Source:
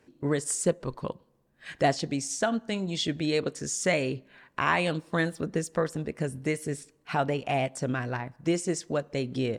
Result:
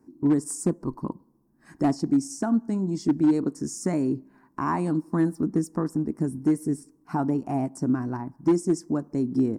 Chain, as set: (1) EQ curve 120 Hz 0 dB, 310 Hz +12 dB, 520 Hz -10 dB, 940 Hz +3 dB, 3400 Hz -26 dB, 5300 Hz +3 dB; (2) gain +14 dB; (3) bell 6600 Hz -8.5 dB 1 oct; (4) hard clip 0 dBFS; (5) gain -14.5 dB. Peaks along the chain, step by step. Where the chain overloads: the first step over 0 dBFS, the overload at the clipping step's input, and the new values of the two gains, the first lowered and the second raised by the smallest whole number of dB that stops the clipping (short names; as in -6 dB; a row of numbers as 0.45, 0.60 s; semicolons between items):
-8.5, +5.5, +5.5, 0.0, -14.5 dBFS; step 2, 5.5 dB; step 2 +8 dB, step 5 -8.5 dB